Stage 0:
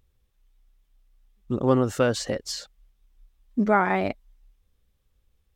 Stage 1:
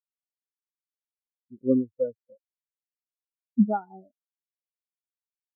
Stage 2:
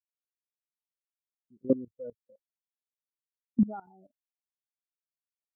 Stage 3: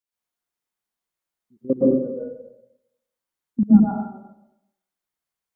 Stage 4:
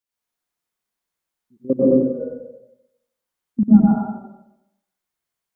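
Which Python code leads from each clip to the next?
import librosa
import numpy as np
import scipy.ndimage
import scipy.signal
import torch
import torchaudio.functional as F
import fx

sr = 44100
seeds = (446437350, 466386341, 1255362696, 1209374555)

y1 = scipy.signal.sosfilt(scipy.signal.cheby1(8, 1.0, 1500.0, 'lowpass', fs=sr, output='sos'), x)
y1 = fx.spectral_expand(y1, sr, expansion=4.0)
y1 = F.gain(torch.from_numpy(y1), -2.5).numpy()
y2 = fx.level_steps(y1, sr, step_db=19)
y3 = fx.rev_plate(y2, sr, seeds[0], rt60_s=0.84, hf_ratio=0.4, predelay_ms=105, drr_db=-8.0)
y3 = F.gain(torch.from_numpy(y3), 2.5).numpy()
y4 = y3 + 10.0 ** (-3.0 / 20.0) * np.pad(y3, (int(94 * sr / 1000.0), 0))[:len(y3)]
y4 = F.gain(torch.from_numpy(y4), 1.5).numpy()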